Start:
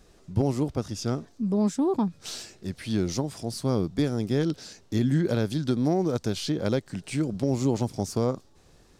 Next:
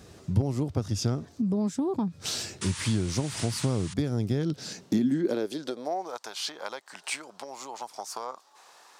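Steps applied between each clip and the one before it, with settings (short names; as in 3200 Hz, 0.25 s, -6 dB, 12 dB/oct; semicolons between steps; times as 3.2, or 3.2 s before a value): painted sound noise, 2.61–3.94, 820–10000 Hz -41 dBFS; compressor 6:1, threshold -34 dBFS, peak gain reduction 14 dB; high-pass sweep 92 Hz -> 930 Hz, 4.35–6.2; gain +7 dB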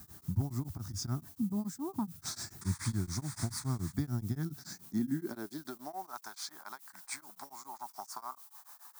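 fixed phaser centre 1200 Hz, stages 4; added noise violet -50 dBFS; beating tremolo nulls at 7 Hz; gain -2 dB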